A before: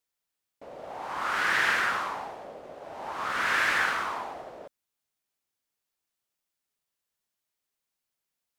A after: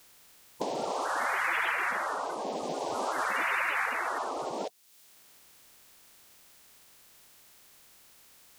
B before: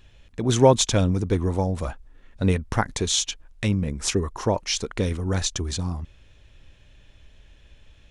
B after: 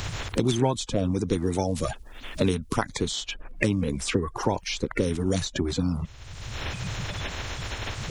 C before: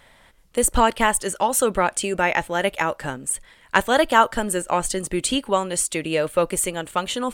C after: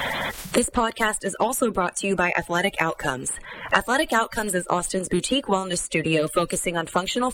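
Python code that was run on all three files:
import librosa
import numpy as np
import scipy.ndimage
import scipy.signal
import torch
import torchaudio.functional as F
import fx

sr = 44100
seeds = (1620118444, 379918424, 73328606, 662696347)

y = fx.spec_quant(x, sr, step_db=30)
y = fx.dynamic_eq(y, sr, hz=6100.0, q=2.2, threshold_db=-40.0, ratio=4.0, max_db=-4)
y = fx.band_squash(y, sr, depth_pct=100)
y = y * 10.0 ** (-2.0 / 20.0)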